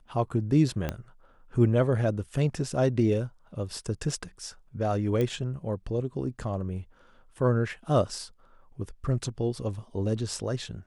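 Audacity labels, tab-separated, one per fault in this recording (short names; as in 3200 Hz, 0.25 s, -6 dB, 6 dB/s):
0.890000	0.890000	pop -16 dBFS
5.210000	5.210000	pop -17 dBFS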